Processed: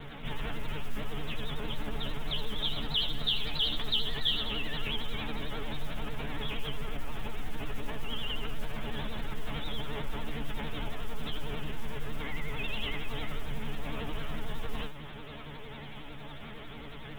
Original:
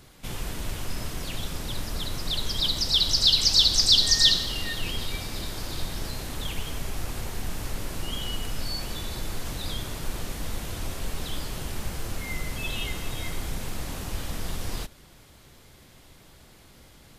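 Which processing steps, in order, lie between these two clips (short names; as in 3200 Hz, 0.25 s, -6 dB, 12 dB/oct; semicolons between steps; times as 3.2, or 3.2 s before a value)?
steep low-pass 3600 Hz 96 dB/oct; resonator bank D3 fifth, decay 0.22 s; modulation noise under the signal 30 dB; vibrato 11 Hz 92 cents; fast leveller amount 50%; gain +4 dB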